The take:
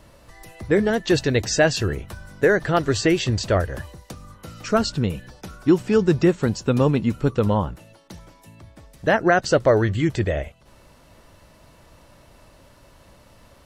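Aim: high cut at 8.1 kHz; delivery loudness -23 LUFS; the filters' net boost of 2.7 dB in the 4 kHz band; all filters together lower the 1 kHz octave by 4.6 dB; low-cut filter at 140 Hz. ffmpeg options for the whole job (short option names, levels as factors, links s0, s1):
-af "highpass=140,lowpass=8100,equalizer=f=1000:t=o:g=-7.5,equalizer=f=4000:t=o:g=4,volume=0.944"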